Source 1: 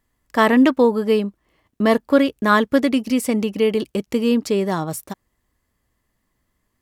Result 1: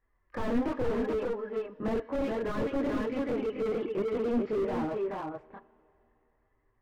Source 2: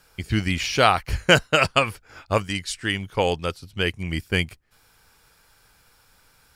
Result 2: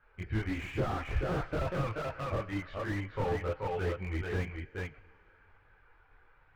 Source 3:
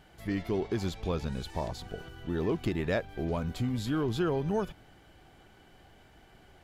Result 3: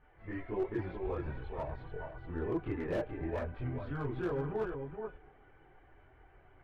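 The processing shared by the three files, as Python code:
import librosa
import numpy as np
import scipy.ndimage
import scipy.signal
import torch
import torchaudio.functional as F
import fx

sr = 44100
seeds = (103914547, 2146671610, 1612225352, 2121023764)

y = fx.spec_quant(x, sr, step_db=15)
y = scipy.signal.sosfilt(scipy.signal.butter(4, 2100.0, 'lowpass', fs=sr, output='sos'), y)
y = fx.peak_eq(y, sr, hz=190.0, db=-12.0, octaves=0.8)
y = fx.notch(y, sr, hz=680.0, q=19.0)
y = 10.0 ** (-14.0 / 20.0) * np.tanh(y / 10.0 ** (-14.0 / 20.0))
y = fx.chorus_voices(y, sr, voices=4, hz=0.47, base_ms=25, depth_ms=4.0, mix_pct=60)
y = y + 10.0 ** (-6.5 / 20.0) * np.pad(y, (int(430 * sr / 1000.0), 0))[:len(y)]
y = fx.rev_double_slope(y, sr, seeds[0], early_s=0.22, late_s=3.1, knee_db=-18, drr_db=16.5)
y = fx.slew_limit(y, sr, full_power_hz=18.0)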